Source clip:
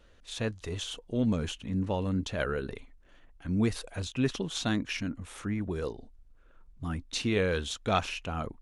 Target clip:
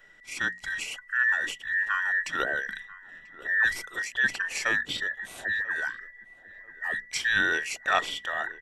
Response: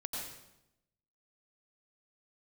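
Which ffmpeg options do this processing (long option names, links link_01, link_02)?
-filter_complex "[0:a]afftfilt=real='real(if(between(b,1,1012),(2*floor((b-1)/92)+1)*92-b,b),0)':imag='imag(if(between(b,1,1012),(2*floor((b-1)/92)+1)*92-b,b),0)*if(between(b,1,1012),-1,1)':win_size=2048:overlap=0.75,bandreject=frequency=60:width_type=h:width=6,bandreject=frequency=120:width_type=h:width=6,bandreject=frequency=180:width_type=h:width=6,bandreject=frequency=240:width_type=h:width=6,asplit=2[link_01][link_02];[link_02]adelay=989,lowpass=frequency=1200:poles=1,volume=-17dB,asplit=2[link_03][link_04];[link_04]adelay=989,lowpass=frequency=1200:poles=1,volume=0.36,asplit=2[link_05][link_06];[link_06]adelay=989,lowpass=frequency=1200:poles=1,volume=0.36[link_07];[link_01][link_03][link_05][link_07]amix=inputs=4:normalize=0,volume=2.5dB"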